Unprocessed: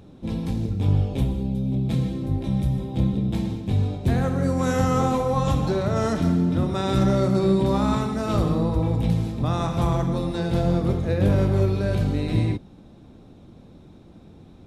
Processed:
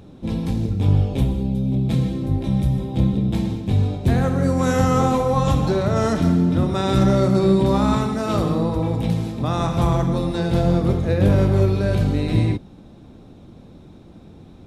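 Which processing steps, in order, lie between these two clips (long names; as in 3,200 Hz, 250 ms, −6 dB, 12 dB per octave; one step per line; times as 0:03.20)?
0:08.15–0:09.57: low-shelf EQ 81 Hz −11.5 dB
level +3.5 dB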